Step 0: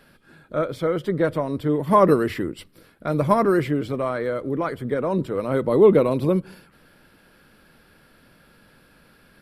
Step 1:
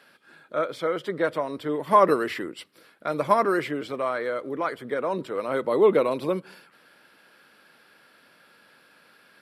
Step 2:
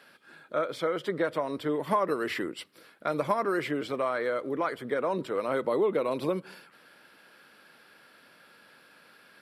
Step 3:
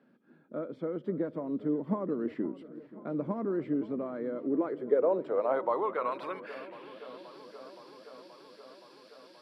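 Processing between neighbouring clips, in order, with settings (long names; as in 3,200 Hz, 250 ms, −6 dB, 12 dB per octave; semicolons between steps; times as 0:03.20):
meter weighting curve A
downward compressor 4 to 1, threshold −24 dBFS, peak gain reduction 10.5 dB
band-pass filter sweep 230 Hz → 5,000 Hz, 0:04.31–0:07.46; feedback echo with a swinging delay time 524 ms, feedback 78%, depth 104 cents, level −18 dB; level +6 dB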